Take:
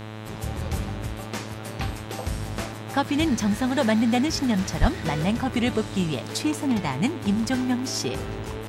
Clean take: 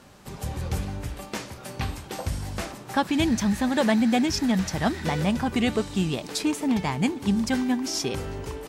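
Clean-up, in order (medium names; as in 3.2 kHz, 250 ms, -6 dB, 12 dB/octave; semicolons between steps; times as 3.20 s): de-hum 108.4 Hz, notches 38; de-plosive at 4.80 s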